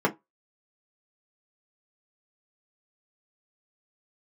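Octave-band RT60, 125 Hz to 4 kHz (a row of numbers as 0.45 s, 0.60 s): 0.20 s, 0.20 s, 0.15 s, 0.20 s, 0.15 s, 0.10 s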